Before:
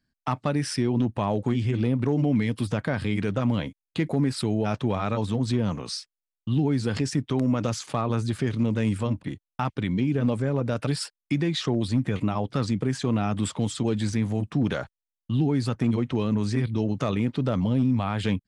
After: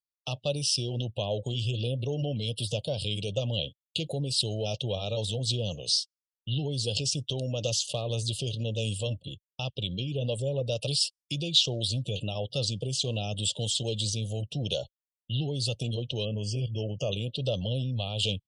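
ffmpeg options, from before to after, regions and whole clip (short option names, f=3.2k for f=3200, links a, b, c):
-filter_complex "[0:a]asettb=1/sr,asplit=3[a][b][c];[a]atrim=end=16.254[d];[b]atrim=start=16.25:end=17.12,asetpts=PTS-STARTPTS,afade=t=in:d=0.004:c=qsin,afade=t=out:st=0.866:d=0.004:c=qsin,asuperstop=centerf=3900:order=20:qfactor=3.6,aemphasis=mode=reproduction:type=cd[e];[c]atrim=start=17.116[f];[d][e]acrossfade=d=0.004:c1=hsin:c2=qsin[g];[g][f]acrossfade=d=0.004:c1=qsin:c2=hsin,acrossover=split=6400[h][i];[i]acompressor=threshold=-48dB:ratio=4:attack=1:release=60[j];[h][j]amix=inputs=2:normalize=0,firequalizer=gain_entry='entry(130,0);entry(250,-14);entry(540,6);entry(900,-13);entry(1900,-28);entry(2800,14);entry(5800,13);entry(8400,15)':delay=0.05:min_phase=1,afftdn=nr=29:nf=-45,volume=-4dB"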